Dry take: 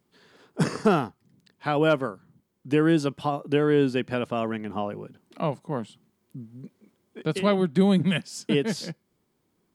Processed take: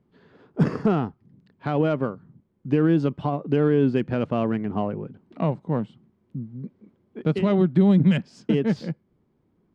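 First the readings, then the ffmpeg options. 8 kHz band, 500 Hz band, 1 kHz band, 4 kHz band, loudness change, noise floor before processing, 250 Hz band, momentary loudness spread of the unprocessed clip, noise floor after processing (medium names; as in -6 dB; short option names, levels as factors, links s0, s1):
under -15 dB, 0.0 dB, -2.0 dB, -7.0 dB, +2.0 dB, -73 dBFS, +3.5 dB, 18 LU, -68 dBFS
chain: -af "alimiter=limit=0.168:level=0:latency=1:release=79,lowshelf=f=360:g=9,adynamicsmooth=sensitivity=1:basefreq=2700"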